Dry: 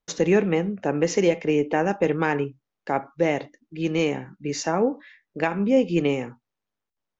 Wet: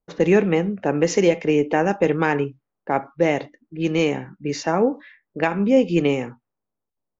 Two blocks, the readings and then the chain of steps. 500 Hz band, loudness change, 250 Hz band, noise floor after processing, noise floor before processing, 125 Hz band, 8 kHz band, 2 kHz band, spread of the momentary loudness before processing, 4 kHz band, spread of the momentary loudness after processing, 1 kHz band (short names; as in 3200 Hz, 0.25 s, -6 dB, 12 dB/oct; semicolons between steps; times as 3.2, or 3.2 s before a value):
+3.0 dB, +3.0 dB, +3.0 dB, -82 dBFS, -85 dBFS, +3.0 dB, n/a, +3.0 dB, 11 LU, +2.0 dB, 11 LU, +3.0 dB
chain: low-pass opened by the level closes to 780 Hz, open at -20.5 dBFS; gain +3 dB